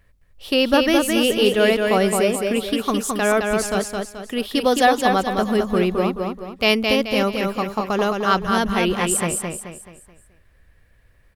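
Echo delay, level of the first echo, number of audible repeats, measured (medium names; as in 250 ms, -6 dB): 215 ms, -4.0 dB, 4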